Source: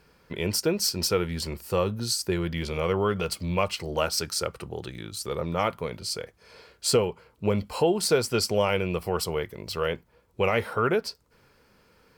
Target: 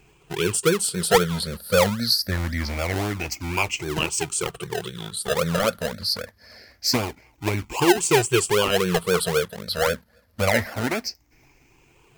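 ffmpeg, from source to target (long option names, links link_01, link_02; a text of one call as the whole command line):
ffmpeg -i in.wav -filter_complex "[0:a]afftfilt=real='re*pow(10,20/40*sin(2*PI*(0.69*log(max(b,1)*sr/1024/100)/log(2)-(0.25)*(pts-256)/sr)))':imag='im*pow(10,20/40*sin(2*PI*(0.69*log(max(b,1)*sr/1024/100)/log(2)-(0.25)*(pts-256)/sr)))':win_size=1024:overlap=0.75,acrossover=split=1100[link_01][link_02];[link_01]acrusher=samples=31:mix=1:aa=0.000001:lfo=1:lforange=18.6:lforate=3.8[link_03];[link_03][link_02]amix=inputs=2:normalize=0" out.wav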